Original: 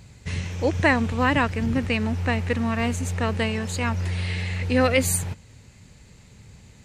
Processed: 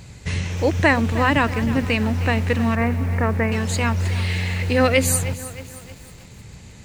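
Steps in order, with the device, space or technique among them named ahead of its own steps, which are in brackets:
mains-hum notches 50/100/150/200/250 Hz
0:02.75–0:03.52: Butterworth low-pass 2,400 Hz 72 dB per octave
parallel compression (in parallel at −0.5 dB: downward compressor, threshold −32 dBFS, peak gain reduction 16.5 dB)
on the sum: feedback echo at a low word length 312 ms, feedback 55%, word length 6 bits, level −14 dB
level +1.5 dB

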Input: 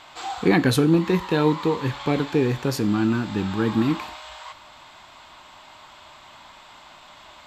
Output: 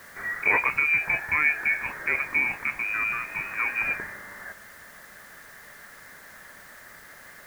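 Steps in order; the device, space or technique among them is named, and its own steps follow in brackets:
scrambled radio voice (band-pass filter 390–2,900 Hz; voice inversion scrambler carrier 2,700 Hz; white noise bed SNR 24 dB)

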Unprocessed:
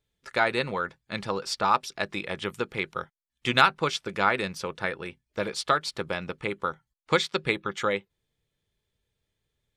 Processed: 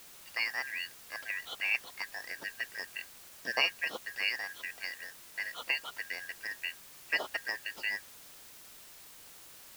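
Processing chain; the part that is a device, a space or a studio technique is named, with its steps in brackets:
split-band scrambled radio (band-splitting scrambler in four parts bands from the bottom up 3142; band-pass filter 310–3,300 Hz; white noise bed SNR 14 dB)
level −7.5 dB

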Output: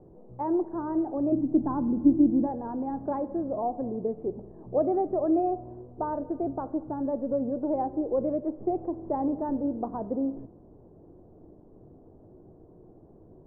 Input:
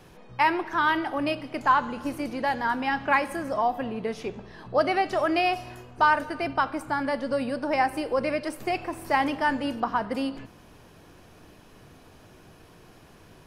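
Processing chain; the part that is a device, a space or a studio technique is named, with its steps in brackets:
0:01.32–0:02.47: low shelf with overshoot 380 Hz +6 dB, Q 3
under water (low-pass filter 700 Hz 24 dB per octave; parametric band 350 Hz +6 dB 0.58 octaves)
level −1.5 dB

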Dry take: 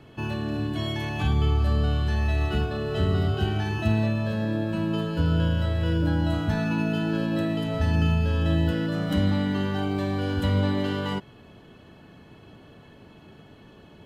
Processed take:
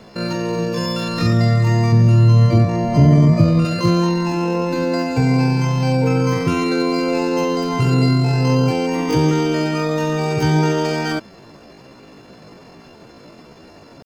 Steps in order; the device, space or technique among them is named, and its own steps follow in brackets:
chipmunk voice (pitch shifter +8 semitones)
0:01.92–0:03.65: tilt shelving filter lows +6.5 dB, about 660 Hz
level +7 dB

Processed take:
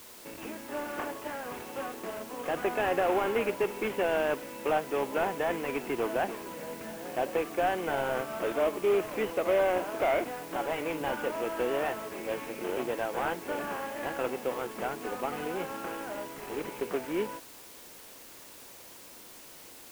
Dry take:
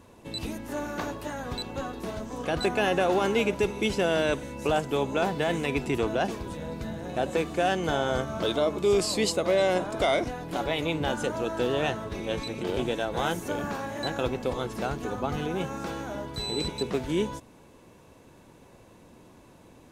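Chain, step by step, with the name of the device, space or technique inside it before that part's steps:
army field radio (band-pass filter 320–3,300 Hz; variable-slope delta modulation 16 kbit/s; white noise bed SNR 18 dB)
level −1 dB

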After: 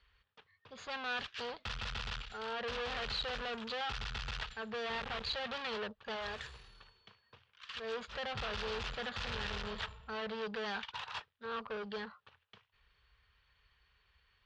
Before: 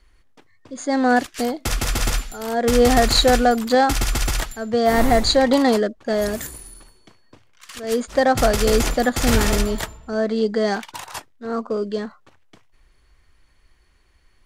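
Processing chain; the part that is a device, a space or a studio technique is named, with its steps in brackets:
scooped metal amplifier (tube saturation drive 29 dB, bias 0.55; loudspeaker in its box 75–3,500 Hz, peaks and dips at 210 Hz +6 dB, 440 Hz +9 dB, 680 Hz −4 dB, 2,100 Hz −7 dB; guitar amp tone stack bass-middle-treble 10-0-10)
0:06.16–0:06.56: parametric band 220 Hz −8 dB
level +4 dB

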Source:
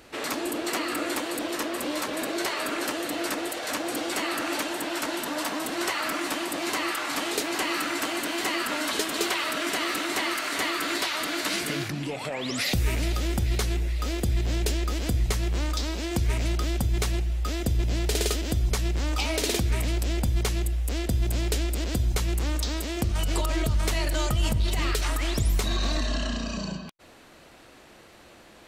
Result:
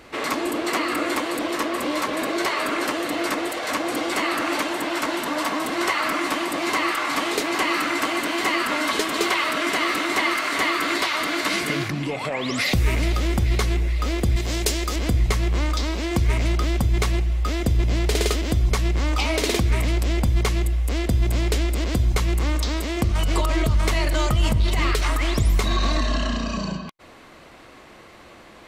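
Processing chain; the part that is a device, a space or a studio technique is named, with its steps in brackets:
inside a helmet (high-shelf EQ 5,500 Hz −7 dB; hollow resonant body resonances 1,100/2,100 Hz, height 7 dB, ringing for 25 ms)
0:14.36–0:14.96: bass and treble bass −5 dB, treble +9 dB
level +5 dB

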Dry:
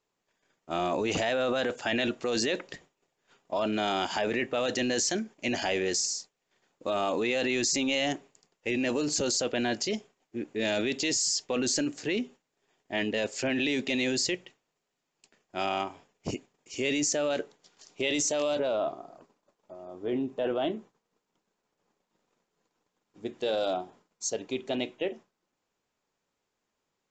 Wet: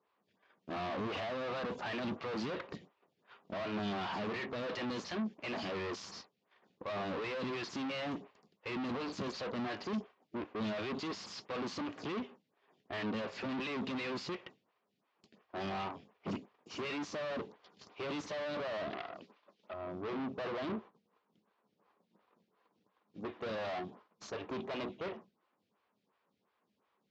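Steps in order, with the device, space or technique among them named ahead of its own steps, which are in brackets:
vibe pedal into a guitar amplifier (phaser with staggered stages 2.8 Hz; tube saturation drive 46 dB, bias 0.7; loudspeaker in its box 88–4,400 Hz, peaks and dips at 100 Hz +5 dB, 200 Hz +9 dB, 1,100 Hz +6 dB)
0:18.90–0:19.74: meter weighting curve D
level +8 dB

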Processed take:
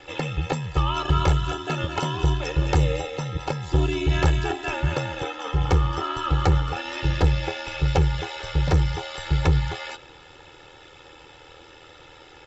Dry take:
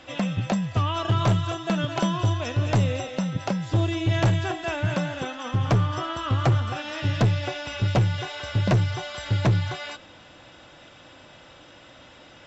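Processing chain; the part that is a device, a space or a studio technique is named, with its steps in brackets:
ring-modulated robot voice (ring modulation 40 Hz; comb filter 2.3 ms, depth 93%)
level +2 dB

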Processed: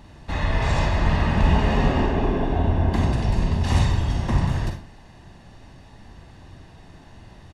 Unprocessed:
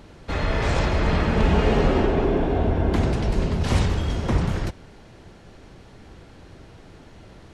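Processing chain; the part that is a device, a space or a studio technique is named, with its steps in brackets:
microphone above a desk (comb filter 1.1 ms, depth 51%; convolution reverb RT60 0.35 s, pre-delay 38 ms, DRR 4 dB)
level −2.5 dB

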